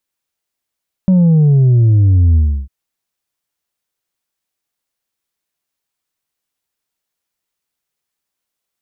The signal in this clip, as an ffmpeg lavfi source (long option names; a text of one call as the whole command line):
ffmpeg -f lavfi -i "aevalsrc='0.447*clip((1.6-t)/0.32,0,1)*tanh(1.41*sin(2*PI*190*1.6/log(65/190)*(exp(log(65/190)*t/1.6)-1)))/tanh(1.41)':duration=1.6:sample_rate=44100" out.wav